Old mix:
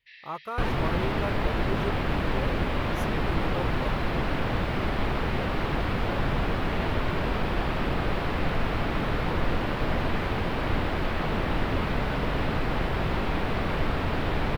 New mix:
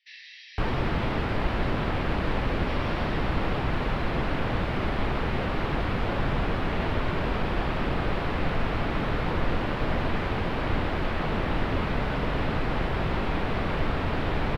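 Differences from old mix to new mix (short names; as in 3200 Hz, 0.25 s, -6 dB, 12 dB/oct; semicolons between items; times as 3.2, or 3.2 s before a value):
speech: muted; first sound: remove air absorption 290 m; master: add high shelf 10000 Hz -11.5 dB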